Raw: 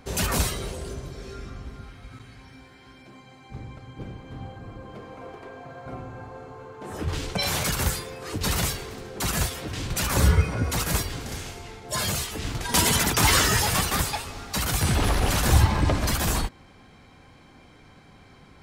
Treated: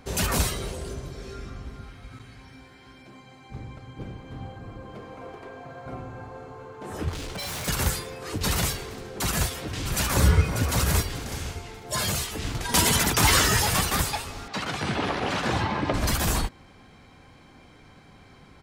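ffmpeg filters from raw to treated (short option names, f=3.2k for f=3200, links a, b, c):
-filter_complex "[0:a]asettb=1/sr,asplit=3[a][b][c];[a]atrim=end=7.094[d];[b]atrim=start=7.09:end=7.68,asetpts=PTS-STARTPTS,afade=t=in:d=0.004:c=qsin,afade=t=out:st=0.586:d=0.004:c=qsin,asoftclip=type=hard:threshold=-31.5dB[e];[c]atrim=start=7.676[f];[d][e]acrossfade=d=0.004:c1=hsin:c2=qsin[g];[g][f]acrossfade=d=0.004:c1=qsin:c2=hsin,asplit=2[h][i];[i]afade=t=in:st=9.26:d=0.01,afade=t=out:st=10.42:d=0.01,aecho=0:1:590|1180|1770:0.421697|0.105424|0.026356[j];[h][j]amix=inputs=2:normalize=0,asettb=1/sr,asplit=3[k][l][m];[k]atrim=end=14.484[n];[l]atrim=start=14.48:end=15.94,asetpts=PTS-STARTPTS,afade=t=in:d=0.004:c=qsin,afade=t=out:st=1.456:d=0.004:c=qsin,highpass=180,lowpass=3.7k[o];[m]atrim=start=15.936[p];[n][o]acrossfade=d=0.004:c1=hsin:c2=qsin[q];[q][p]acrossfade=d=0.004:c1=qsin:c2=hsin"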